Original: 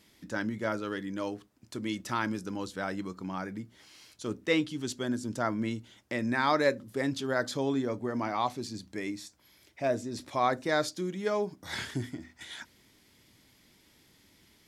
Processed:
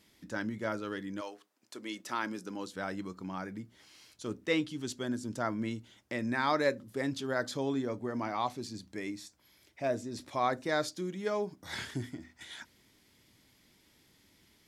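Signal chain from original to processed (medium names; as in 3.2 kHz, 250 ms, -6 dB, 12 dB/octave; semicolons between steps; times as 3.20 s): 1.20–2.74 s: high-pass 650 Hz -> 160 Hz 12 dB/octave; trim -3 dB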